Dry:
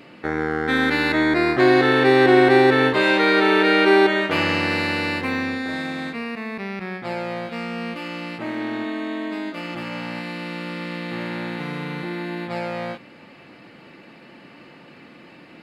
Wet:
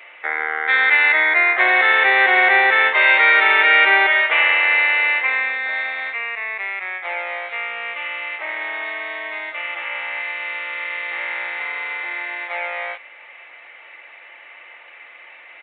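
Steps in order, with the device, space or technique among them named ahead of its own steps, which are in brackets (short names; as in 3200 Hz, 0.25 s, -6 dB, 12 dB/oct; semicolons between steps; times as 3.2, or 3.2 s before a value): musical greeting card (downsampling 8000 Hz; HPF 620 Hz 24 dB/oct; bell 2100 Hz +12 dB 0.39 oct); gain +2 dB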